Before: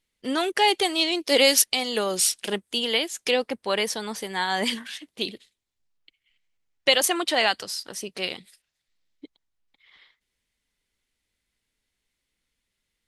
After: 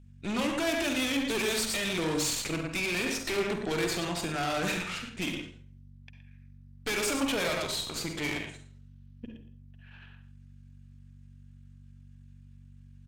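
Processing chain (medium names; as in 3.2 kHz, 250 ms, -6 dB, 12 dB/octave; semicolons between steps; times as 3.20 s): echo from a far wall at 19 m, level -11 dB; valve stage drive 33 dB, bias 0.75; hum 60 Hz, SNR 18 dB; on a send at -3.5 dB: reverberation RT60 0.50 s, pre-delay 38 ms; on the sum: pitch shift -4 st; trim +4 dB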